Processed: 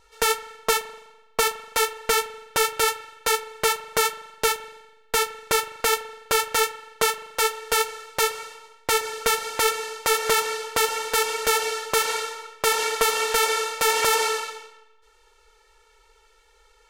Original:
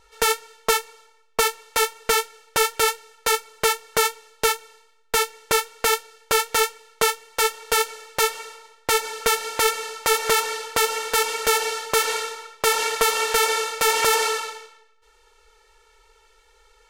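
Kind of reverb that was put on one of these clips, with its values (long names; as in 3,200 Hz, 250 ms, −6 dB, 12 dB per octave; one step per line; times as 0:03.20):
spring reverb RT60 1.1 s, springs 41 ms, chirp 30 ms, DRR 13.5 dB
level −1.5 dB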